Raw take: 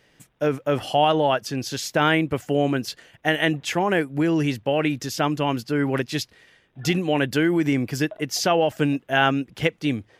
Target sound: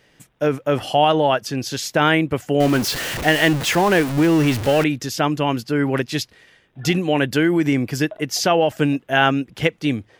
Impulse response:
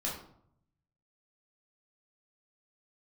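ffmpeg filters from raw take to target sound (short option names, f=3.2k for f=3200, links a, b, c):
-filter_complex "[0:a]asettb=1/sr,asplit=3[a][b][c];[a]atrim=end=2.604[d];[b]atrim=start=2.6:end=4.84,asetpts=PTS-STARTPTS,afade=t=in:d=0.004:c=qsin,afade=t=out:st=2.236:d=0.004:c=qsin,aeval=exprs='val(0)+0.5*0.0668*sgn(val(0))':c=same[e];[c]atrim=start=4.836[f];[d][e]acrossfade=d=0.004:c1=hsin:c2=qsin[g];[g][f]acrossfade=d=0.004:c1=qsin:c2=hsin,volume=3dB"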